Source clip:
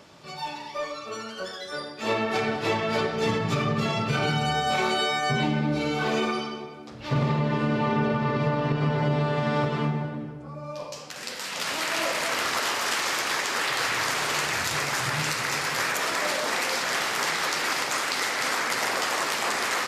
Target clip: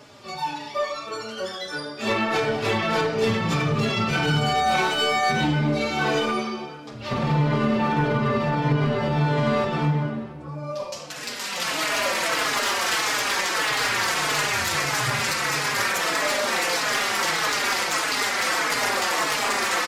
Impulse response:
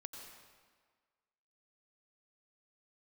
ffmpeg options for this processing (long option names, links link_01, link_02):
-filter_complex "[0:a]asplit=2[link_01][link_02];[link_02]asplit=3[link_03][link_04][link_05];[link_03]adelay=230,afreqshift=73,volume=-21dB[link_06];[link_04]adelay=460,afreqshift=146,volume=-27.4dB[link_07];[link_05]adelay=690,afreqshift=219,volume=-33.8dB[link_08];[link_06][link_07][link_08]amix=inputs=3:normalize=0[link_09];[link_01][link_09]amix=inputs=2:normalize=0,acontrast=63,aeval=exprs='clip(val(0),-1,0.178)':channel_layout=same,asplit=2[link_10][link_11];[link_11]adelay=4.3,afreqshift=-1.6[link_12];[link_10][link_12]amix=inputs=2:normalize=1"